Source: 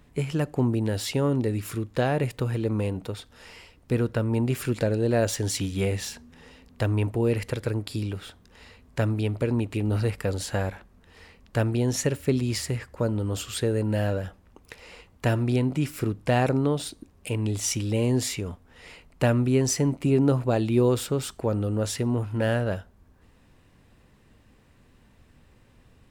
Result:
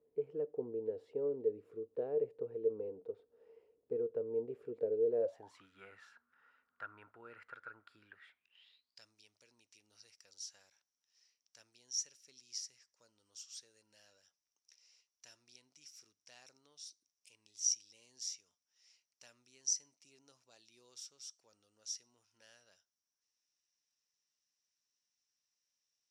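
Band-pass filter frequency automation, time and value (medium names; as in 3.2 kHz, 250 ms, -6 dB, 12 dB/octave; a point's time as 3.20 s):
band-pass filter, Q 14
5.19 s 450 Hz
5.66 s 1.4 kHz
7.98 s 1.4 kHz
9.08 s 5.7 kHz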